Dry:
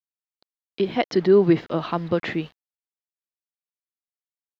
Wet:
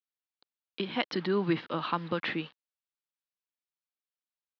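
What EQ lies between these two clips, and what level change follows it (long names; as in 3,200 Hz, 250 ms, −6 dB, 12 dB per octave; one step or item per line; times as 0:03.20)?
low-shelf EQ 240 Hz −11.5 dB
dynamic equaliser 450 Hz, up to −7 dB, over −32 dBFS, Q 1.2
loudspeaker in its box 120–4,400 Hz, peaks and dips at 390 Hz −5 dB, 680 Hz −9 dB, 2,000 Hz −4 dB
0.0 dB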